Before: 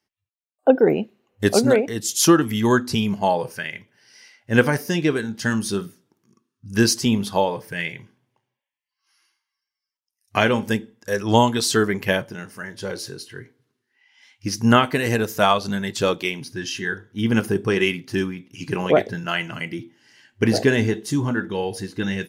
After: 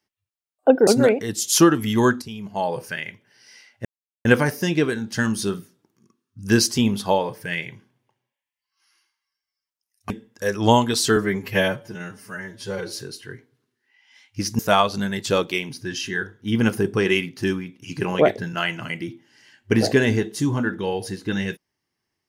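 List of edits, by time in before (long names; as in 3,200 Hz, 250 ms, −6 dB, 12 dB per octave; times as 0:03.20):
0:00.87–0:01.54: remove
0:02.89–0:03.47: fade in quadratic, from −14.5 dB
0:04.52: splice in silence 0.40 s
0:10.37–0:10.76: remove
0:11.82–0:13.00: time-stretch 1.5×
0:14.66–0:15.30: remove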